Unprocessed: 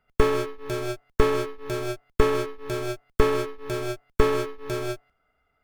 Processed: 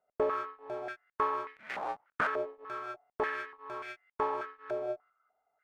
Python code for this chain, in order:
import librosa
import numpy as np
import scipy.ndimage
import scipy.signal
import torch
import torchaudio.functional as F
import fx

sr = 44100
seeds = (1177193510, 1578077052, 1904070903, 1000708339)

y = fx.cycle_switch(x, sr, every=2, mode='inverted', at=(1.56, 2.27))
y = fx.filter_held_bandpass(y, sr, hz=3.4, low_hz=640.0, high_hz=2000.0)
y = F.gain(torch.from_numpy(y), 2.5).numpy()